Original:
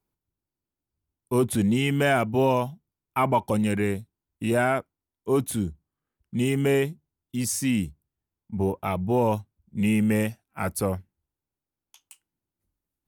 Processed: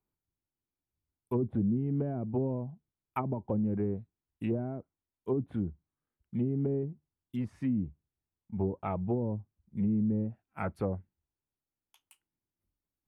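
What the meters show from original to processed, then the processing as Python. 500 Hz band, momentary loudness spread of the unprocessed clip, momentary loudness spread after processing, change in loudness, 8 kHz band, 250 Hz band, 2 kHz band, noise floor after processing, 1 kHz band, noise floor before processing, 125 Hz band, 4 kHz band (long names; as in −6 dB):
−10.5 dB, 11 LU, 11 LU, −8.0 dB, below −35 dB, −6.0 dB, −22.0 dB, below −85 dBFS, −14.0 dB, below −85 dBFS, −5.5 dB, below −25 dB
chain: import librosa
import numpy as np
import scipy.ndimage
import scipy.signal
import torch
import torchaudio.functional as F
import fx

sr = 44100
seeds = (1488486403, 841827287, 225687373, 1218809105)

y = fx.env_lowpass_down(x, sr, base_hz=320.0, full_db=-19.0)
y = fx.peak_eq(y, sr, hz=6300.0, db=-12.0, octaves=1.3)
y = y * librosa.db_to_amplitude(-5.5)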